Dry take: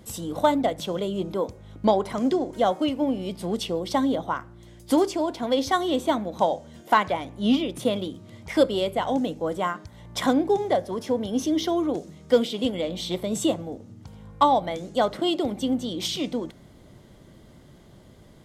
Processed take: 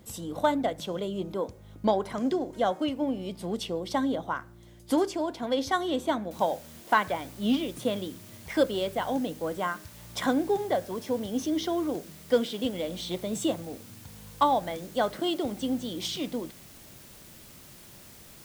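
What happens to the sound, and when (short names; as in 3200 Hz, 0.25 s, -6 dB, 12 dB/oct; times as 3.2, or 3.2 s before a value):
6.31 noise floor step -67 dB -47 dB
whole clip: dynamic EQ 1600 Hz, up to +6 dB, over -48 dBFS, Q 5; gain -4.5 dB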